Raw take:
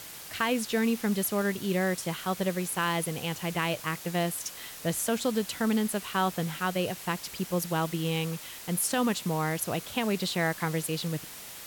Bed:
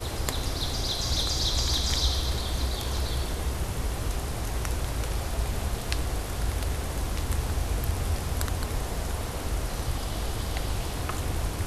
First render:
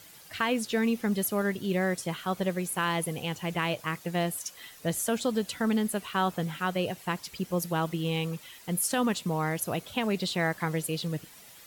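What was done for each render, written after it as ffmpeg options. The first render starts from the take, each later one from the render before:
ffmpeg -i in.wav -af "afftdn=noise_reduction=10:noise_floor=-44" out.wav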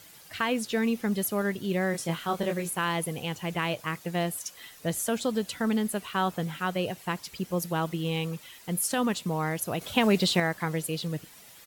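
ffmpeg -i in.wav -filter_complex "[0:a]asplit=3[link_01][link_02][link_03];[link_01]afade=type=out:start_time=1.93:duration=0.02[link_04];[link_02]asplit=2[link_05][link_06];[link_06]adelay=24,volume=-3.5dB[link_07];[link_05][link_07]amix=inputs=2:normalize=0,afade=type=in:start_time=1.93:duration=0.02,afade=type=out:start_time=2.69:duration=0.02[link_08];[link_03]afade=type=in:start_time=2.69:duration=0.02[link_09];[link_04][link_08][link_09]amix=inputs=3:normalize=0,asettb=1/sr,asplit=3[link_10][link_11][link_12];[link_10]atrim=end=9.814[link_13];[link_11]atrim=start=9.81:end=10.4,asetpts=PTS-STARTPTS,afade=type=in:duration=0.004:curve=qsin,afade=type=out:start_time=0.586:duration=0.004:curve=qsin,acontrast=59[link_14];[link_12]atrim=start=10.396[link_15];[link_13][link_14]acrossfade=duration=0.004:curve1=hsin:curve2=qsin[link_16];[link_16][link_15]acrossfade=duration=0.004:curve1=qsin:curve2=hsin" out.wav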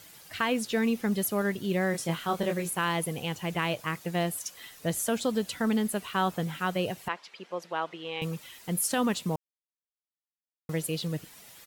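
ffmpeg -i in.wav -filter_complex "[0:a]asettb=1/sr,asplit=3[link_01][link_02][link_03];[link_01]atrim=end=7.084[link_04];[link_02]atrim=start=7.08:end=8.22,asetpts=PTS-STARTPTS,afade=type=in:duration=0.004:curve=qsin,afade=type=out:start_time=1.136:duration=0.004:curve=qsin,highpass=530,lowpass=3200[link_05];[link_03]atrim=start=8.216[link_06];[link_04][link_05]acrossfade=duration=0.004:curve1=hsin:curve2=qsin[link_07];[link_07][link_06]acrossfade=duration=0.004:curve1=qsin:curve2=hsin,asplit=3[link_08][link_09][link_10];[link_08]atrim=end=9.36,asetpts=PTS-STARTPTS,afade=type=out:start_time=9.356:duration=0.004:curve=hsin[link_11];[link_09]atrim=start=9.36:end=10.69,asetpts=PTS-STARTPTS,volume=0[link_12];[link_10]atrim=start=10.69,asetpts=PTS-STARTPTS,afade=type=in:duration=0.004:curve=hsin[link_13];[link_11][link_12][link_13]concat=n=3:v=0:a=1" out.wav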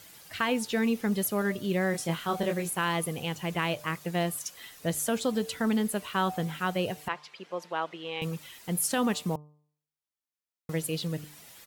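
ffmpeg -i in.wav -af "bandreject=frequency=149.6:width_type=h:width=4,bandreject=frequency=299.2:width_type=h:width=4,bandreject=frequency=448.8:width_type=h:width=4,bandreject=frequency=598.4:width_type=h:width=4,bandreject=frequency=748:width_type=h:width=4,bandreject=frequency=897.6:width_type=h:width=4,bandreject=frequency=1047.2:width_type=h:width=4,bandreject=frequency=1196.8:width_type=h:width=4" out.wav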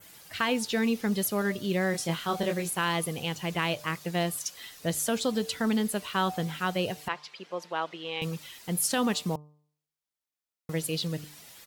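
ffmpeg -i in.wav -af "adynamicequalizer=threshold=0.00316:dfrequency=4600:dqfactor=1.1:tfrequency=4600:tqfactor=1.1:attack=5:release=100:ratio=0.375:range=2.5:mode=boostabove:tftype=bell" out.wav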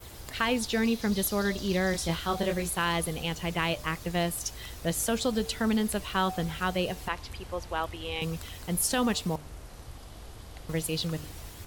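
ffmpeg -i in.wav -i bed.wav -filter_complex "[1:a]volume=-15dB[link_01];[0:a][link_01]amix=inputs=2:normalize=0" out.wav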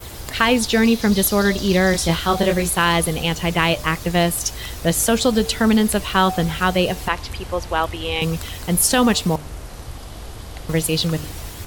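ffmpeg -i in.wav -af "volume=11dB" out.wav

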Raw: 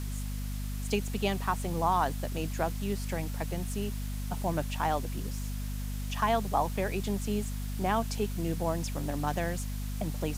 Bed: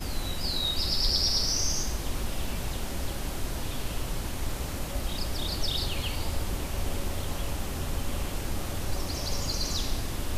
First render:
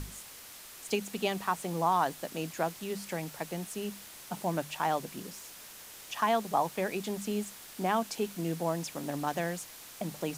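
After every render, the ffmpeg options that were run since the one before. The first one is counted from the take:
ffmpeg -i in.wav -af "bandreject=frequency=50:width_type=h:width=6,bandreject=frequency=100:width_type=h:width=6,bandreject=frequency=150:width_type=h:width=6,bandreject=frequency=200:width_type=h:width=6,bandreject=frequency=250:width_type=h:width=6" out.wav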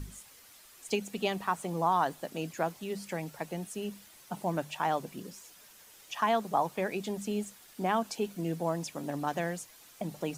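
ffmpeg -i in.wav -af "afftdn=noise_reduction=9:noise_floor=-49" out.wav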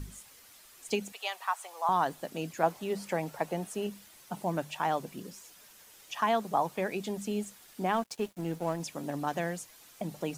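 ffmpeg -i in.wav -filter_complex "[0:a]asettb=1/sr,asplit=3[link_01][link_02][link_03];[link_01]atrim=end=1.124[link_04];[link_02]atrim=start=1.12:end=1.89,asetpts=PTS-STARTPTS,afade=type=in:duration=0.004:curve=qsin,afade=type=out:start_time=0.766:duration=0.004:curve=qsin,highpass=frequency=710:width=0.5412,highpass=frequency=710:width=1.3066[link_05];[link_03]atrim=start=1.886[link_06];[link_04][link_05]acrossfade=duration=0.004:curve1=hsin:curve2=qsin[link_07];[link_07][link_06]acrossfade=duration=0.004:curve1=qsin:curve2=hsin,asettb=1/sr,asplit=3[link_08][link_09][link_10];[link_08]atrim=end=2.634[link_11];[link_09]atrim=start=2.63:end=3.87,asetpts=PTS-STARTPTS,afade=type=in:duration=0.004:curve=qsin,afade=type=out:start_time=1.236:duration=0.004:curve=qsin,equalizer=frequency=760:width=0.62:gain=7[link_12];[link_10]atrim=start=3.866[link_13];[link_11][link_12]acrossfade=duration=0.004:curve1=hsin:curve2=qsin[link_14];[link_14][link_13]acrossfade=duration=0.004:curve1=qsin:curve2=hsin,asettb=1/sr,asplit=3[link_15][link_16][link_17];[link_15]atrim=end=7.934[link_18];[link_16]atrim=start=7.93:end=8.8,asetpts=PTS-STARTPTS,afade=type=in:duration=0.004:curve=qsin,afade=type=out:start_time=0.866:duration=0.004:curve=qsin,aeval=exprs='sgn(val(0))*max(abs(val(0))-0.00501,0)':channel_layout=same[link_19];[link_17]atrim=start=8.796[link_20];[link_18][link_19]acrossfade=duration=0.004:curve1=hsin:curve2=qsin[link_21];[link_21][link_20]acrossfade=duration=0.004:curve1=qsin:curve2=hsin" out.wav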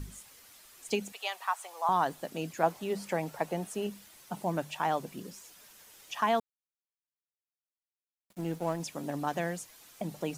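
ffmpeg -i in.wav -filter_complex "[0:a]asplit=3[link_01][link_02][link_03];[link_01]atrim=end=6.4,asetpts=PTS-STARTPTS,afade=type=out:start_time=6.396:duration=0.004:curve=hsin[link_04];[link_02]atrim=start=6.4:end=8.3,asetpts=PTS-STARTPTS,volume=0[link_05];[link_03]atrim=start=8.3,asetpts=PTS-STARTPTS,afade=type=in:duration=0.004:curve=hsin[link_06];[link_04][link_05][link_06]concat=n=3:v=0:a=1" out.wav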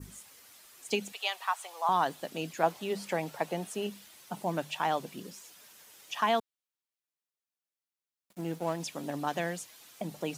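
ffmpeg -i in.wav -af "adynamicequalizer=threshold=0.00316:dfrequency=3400:dqfactor=1.2:tfrequency=3400:tqfactor=1.2:attack=5:release=100:ratio=0.375:range=2.5:mode=boostabove:tftype=bell,highpass=frequency=120:poles=1" out.wav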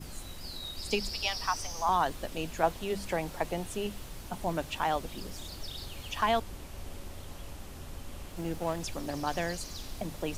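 ffmpeg -i in.wav -i bed.wav -filter_complex "[1:a]volume=-12dB[link_01];[0:a][link_01]amix=inputs=2:normalize=0" out.wav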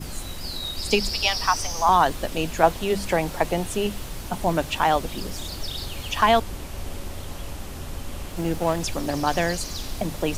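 ffmpeg -i in.wav -af "volume=9.5dB" out.wav

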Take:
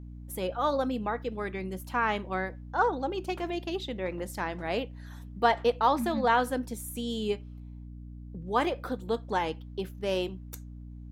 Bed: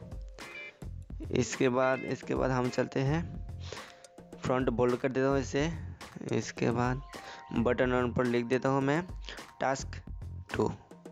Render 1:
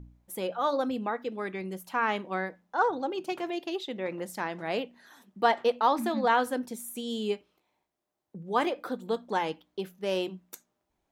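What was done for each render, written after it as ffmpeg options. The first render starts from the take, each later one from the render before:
ffmpeg -i in.wav -af "bandreject=frequency=60:width_type=h:width=4,bandreject=frequency=120:width_type=h:width=4,bandreject=frequency=180:width_type=h:width=4,bandreject=frequency=240:width_type=h:width=4,bandreject=frequency=300:width_type=h:width=4" out.wav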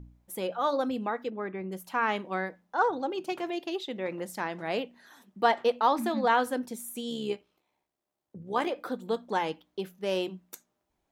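ffmpeg -i in.wav -filter_complex "[0:a]asplit=3[link_01][link_02][link_03];[link_01]afade=type=out:start_time=1.29:duration=0.02[link_04];[link_02]lowpass=1700,afade=type=in:start_time=1.29:duration=0.02,afade=type=out:start_time=1.71:duration=0.02[link_05];[link_03]afade=type=in:start_time=1.71:duration=0.02[link_06];[link_04][link_05][link_06]amix=inputs=3:normalize=0,asplit=3[link_07][link_08][link_09];[link_07]afade=type=out:start_time=7.09:duration=0.02[link_10];[link_08]tremolo=f=69:d=0.462,afade=type=in:start_time=7.09:duration=0.02,afade=type=out:start_time=8.69:duration=0.02[link_11];[link_09]afade=type=in:start_time=8.69:duration=0.02[link_12];[link_10][link_11][link_12]amix=inputs=3:normalize=0" out.wav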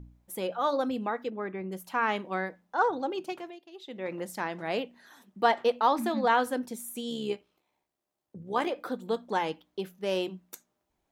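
ffmpeg -i in.wav -filter_complex "[0:a]asplit=3[link_01][link_02][link_03];[link_01]atrim=end=3.59,asetpts=PTS-STARTPTS,afade=type=out:start_time=3.16:duration=0.43:silence=0.133352[link_04];[link_02]atrim=start=3.59:end=3.72,asetpts=PTS-STARTPTS,volume=-17.5dB[link_05];[link_03]atrim=start=3.72,asetpts=PTS-STARTPTS,afade=type=in:duration=0.43:silence=0.133352[link_06];[link_04][link_05][link_06]concat=n=3:v=0:a=1" out.wav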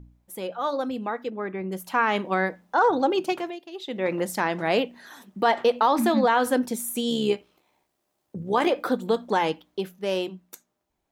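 ffmpeg -i in.wav -af "dynaudnorm=framelen=220:gausssize=17:maxgain=11.5dB,alimiter=limit=-11dB:level=0:latency=1:release=77" out.wav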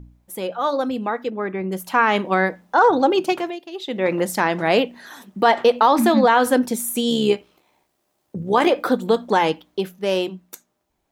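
ffmpeg -i in.wav -af "volume=5.5dB" out.wav

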